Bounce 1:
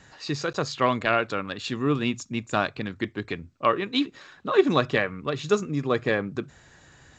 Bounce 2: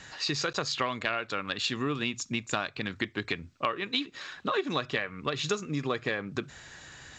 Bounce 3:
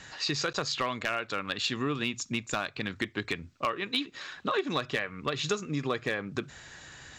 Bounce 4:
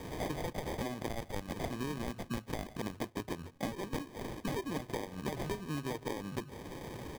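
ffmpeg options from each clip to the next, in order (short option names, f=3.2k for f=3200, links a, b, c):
-af "equalizer=f=3.7k:w=0.33:g=8.5,acompressor=threshold=-27dB:ratio=6"
-af "asoftclip=type=hard:threshold=-18.5dB"
-filter_complex "[0:a]asplit=2[a][b];[b]adelay=150,highpass=300,lowpass=3.4k,asoftclip=type=hard:threshold=-27.5dB,volume=-19dB[c];[a][c]amix=inputs=2:normalize=0,acrusher=samples=32:mix=1:aa=0.000001,acrossover=split=1200|5200[d][e][f];[d]acompressor=threshold=-41dB:ratio=4[g];[e]acompressor=threshold=-53dB:ratio=4[h];[f]acompressor=threshold=-57dB:ratio=4[i];[g][h][i]amix=inputs=3:normalize=0,volume=4.5dB"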